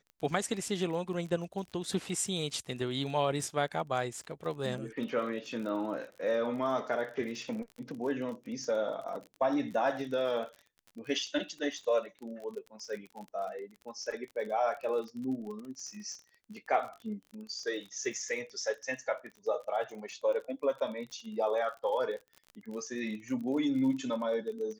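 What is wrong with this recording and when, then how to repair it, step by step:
surface crackle 37 per second −40 dBFS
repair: click removal

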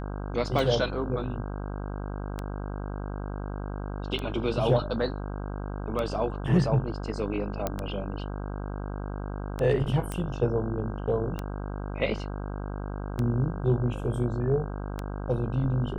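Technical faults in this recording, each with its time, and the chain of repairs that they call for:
mains buzz 50 Hz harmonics 32 −34 dBFS
scratch tick 33 1/3 rpm
0:07.67: click −13 dBFS
0:10.12: click −18 dBFS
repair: click removal
hum removal 50 Hz, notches 32

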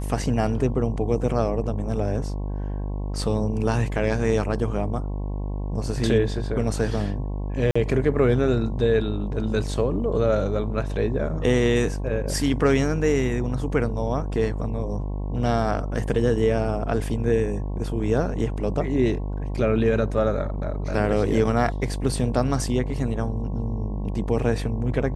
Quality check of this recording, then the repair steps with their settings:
mains buzz 50 Hz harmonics 22 −28 dBFS
0:07.71–0:07.75: drop-out 45 ms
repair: hum removal 50 Hz, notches 22
repair the gap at 0:07.71, 45 ms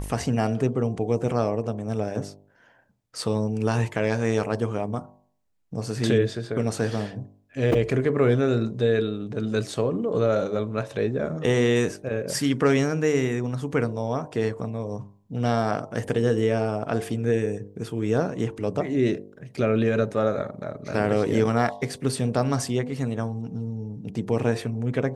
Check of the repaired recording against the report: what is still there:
none of them is left

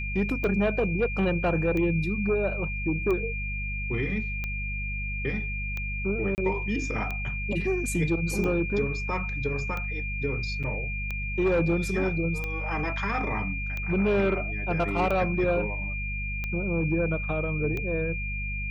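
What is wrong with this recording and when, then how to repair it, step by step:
mains hum 50 Hz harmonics 4 −33 dBFS
scratch tick 45 rpm −19 dBFS
whistle 2,400 Hz −33 dBFS
0:06.35–0:06.38: drop-out 29 ms
0:10.63–0:10.64: drop-out 6.9 ms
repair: click removal
notch filter 2,400 Hz, Q 30
hum removal 50 Hz, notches 4
repair the gap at 0:06.35, 29 ms
repair the gap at 0:10.63, 6.9 ms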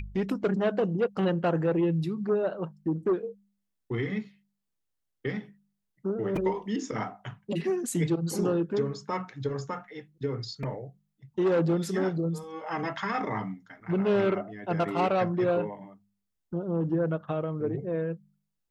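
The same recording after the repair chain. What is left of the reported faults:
none of them is left

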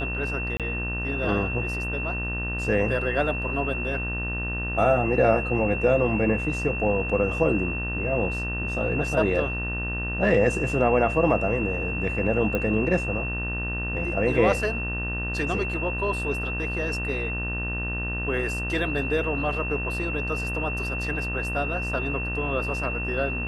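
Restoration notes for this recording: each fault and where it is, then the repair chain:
mains buzz 60 Hz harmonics 32 −31 dBFS
whistle 2,700 Hz −30 dBFS
0:00.57–0:00.60: drop-out 27 ms
0:12.55: click −14 dBFS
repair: click removal
hum removal 60 Hz, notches 32
notch filter 2,700 Hz, Q 30
repair the gap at 0:00.57, 27 ms

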